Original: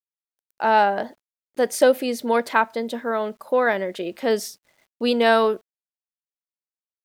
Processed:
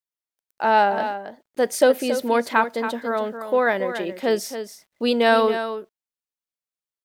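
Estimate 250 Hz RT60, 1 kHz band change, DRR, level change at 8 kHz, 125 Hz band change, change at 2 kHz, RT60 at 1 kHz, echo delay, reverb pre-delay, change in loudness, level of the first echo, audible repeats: none, +0.5 dB, none, +0.5 dB, n/a, +0.5 dB, none, 0.277 s, none, 0.0 dB, -10.0 dB, 1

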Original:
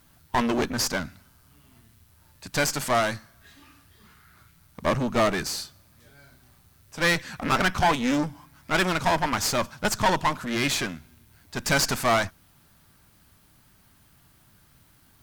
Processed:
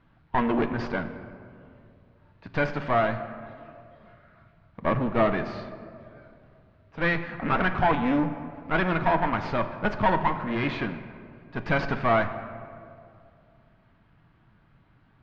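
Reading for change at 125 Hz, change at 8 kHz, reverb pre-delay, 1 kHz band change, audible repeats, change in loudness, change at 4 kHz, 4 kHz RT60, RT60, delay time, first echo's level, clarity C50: +1.0 dB, under -30 dB, 4 ms, -0.5 dB, none, -1.5 dB, -12.5 dB, 1.2 s, 2.4 s, none, none, 10.5 dB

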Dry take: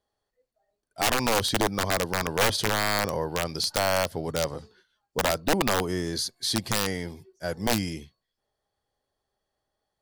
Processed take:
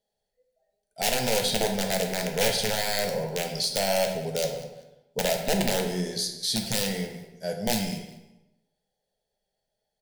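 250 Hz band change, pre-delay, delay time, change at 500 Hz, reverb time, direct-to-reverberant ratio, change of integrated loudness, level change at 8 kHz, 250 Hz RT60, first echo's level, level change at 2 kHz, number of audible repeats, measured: -0.5 dB, 8 ms, 0.196 s, +1.0 dB, 0.95 s, 2.5 dB, -0.5 dB, +1.0 dB, 1.0 s, -17.5 dB, -3.5 dB, 2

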